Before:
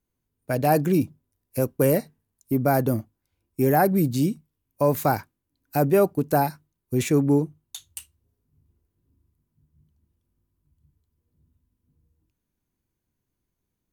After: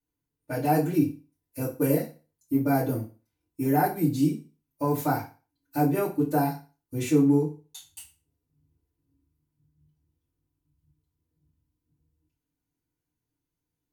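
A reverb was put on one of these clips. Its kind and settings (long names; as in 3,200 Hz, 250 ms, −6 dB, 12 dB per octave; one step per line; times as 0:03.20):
feedback delay network reverb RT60 0.34 s, low-frequency decay 0.95×, high-frequency decay 0.95×, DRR −9.5 dB
level −14.5 dB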